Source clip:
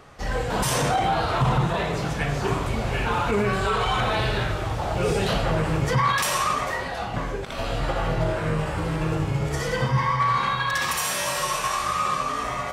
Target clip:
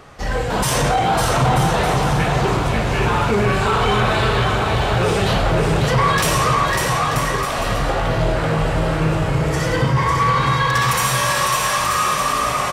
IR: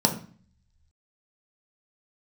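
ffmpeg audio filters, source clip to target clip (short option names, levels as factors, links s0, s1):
-af "aecho=1:1:550|935|1204|1393|1525:0.631|0.398|0.251|0.158|0.1,asoftclip=type=tanh:threshold=0.211,volume=1.88"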